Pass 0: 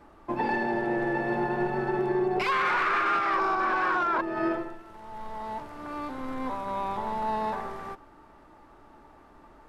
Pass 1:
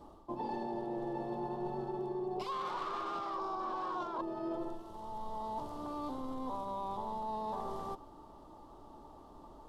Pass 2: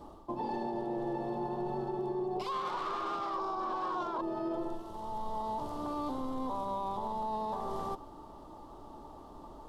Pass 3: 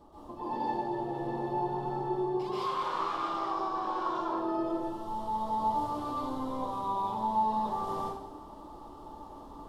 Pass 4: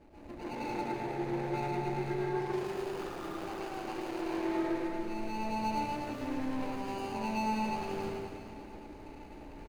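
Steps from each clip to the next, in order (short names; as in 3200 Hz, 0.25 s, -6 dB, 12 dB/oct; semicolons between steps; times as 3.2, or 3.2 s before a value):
band shelf 1900 Hz -16 dB 1.1 oct; reverse; compressor 6:1, threshold -36 dBFS, peak gain reduction 12.5 dB; reverse
limiter -32 dBFS, peak gain reduction 4 dB; gain +4.5 dB
plate-style reverb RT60 0.82 s, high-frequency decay 0.95×, pre-delay 0.115 s, DRR -9 dB; gain -7 dB
median filter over 41 samples; on a send: reverse bouncing-ball echo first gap 0.11 s, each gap 1.3×, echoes 5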